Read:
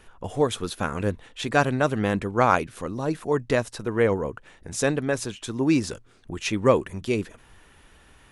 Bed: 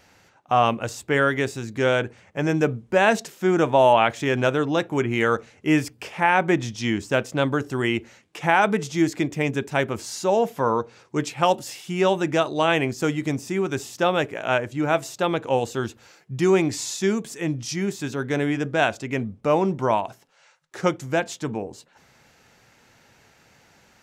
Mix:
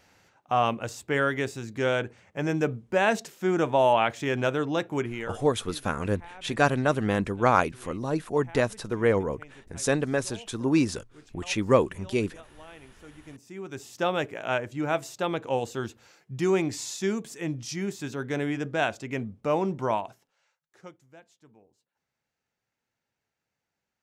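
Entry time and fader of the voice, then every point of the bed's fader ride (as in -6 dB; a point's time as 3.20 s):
5.05 s, -1.5 dB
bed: 4.98 s -5 dB
5.64 s -28 dB
12.99 s -28 dB
14.02 s -5.5 dB
19.96 s -5.5 dB
21.10 s -29 dB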